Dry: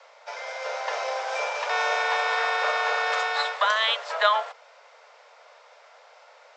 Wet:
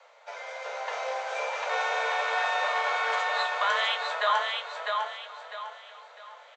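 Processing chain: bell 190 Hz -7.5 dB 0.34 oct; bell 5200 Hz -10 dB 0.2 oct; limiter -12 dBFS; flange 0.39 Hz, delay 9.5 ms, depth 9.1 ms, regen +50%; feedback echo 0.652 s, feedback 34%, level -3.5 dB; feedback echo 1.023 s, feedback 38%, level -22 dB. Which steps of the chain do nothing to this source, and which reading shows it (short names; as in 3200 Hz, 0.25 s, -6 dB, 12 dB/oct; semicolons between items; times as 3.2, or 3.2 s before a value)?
bell 190 Hz: input band starts at 400 Hz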